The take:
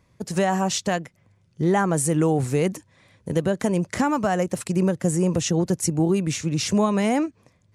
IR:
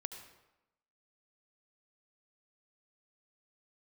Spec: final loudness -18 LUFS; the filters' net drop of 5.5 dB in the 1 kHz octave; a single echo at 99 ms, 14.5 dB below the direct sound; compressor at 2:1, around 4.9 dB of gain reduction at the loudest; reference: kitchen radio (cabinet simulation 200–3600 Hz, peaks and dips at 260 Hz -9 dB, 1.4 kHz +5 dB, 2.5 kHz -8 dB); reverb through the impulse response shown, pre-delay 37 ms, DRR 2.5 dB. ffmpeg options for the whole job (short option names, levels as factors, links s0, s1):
-filter_complex "[0:a]equalizer=f=1000:t=o:g=-8.5,acompressor=threshold=0.0501:ratio=2,aecho=1:1:99:0.188,asplit=2[s0][s1];[1:a]atrim=start_sample=2205,adelay=37[s2];[s1][s2]afir=irnorm=-1:irlink=0,volume=0.944[s3];[s0][s3]amix=inputs=2:normalize=0,highpass=200,equalizer=f=260:t=q:w=4:g=-9,equalizer=f=1400:t=q:w=4:g=5,equalizer=f=2500:t=q:w=4:g=-8,lowpass=f=3600:w=0.5412,lowpass=f=3600:w=1.3066,volume=3.76"